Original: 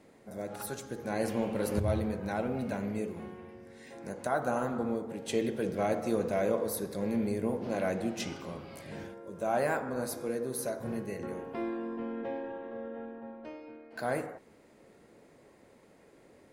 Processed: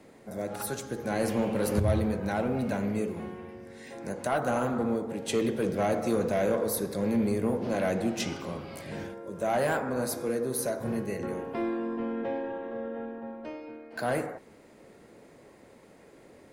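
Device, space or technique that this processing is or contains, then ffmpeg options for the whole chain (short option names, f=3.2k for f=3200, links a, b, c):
one-band saturation: -filter_complex "[0:a]acrossover=split=210|4500[a][b][c];[b]asoftclip=type=tanh:threshold=-26dB[d];[a][d][c]amix=inputs=3:normalize=0,volume=5dB"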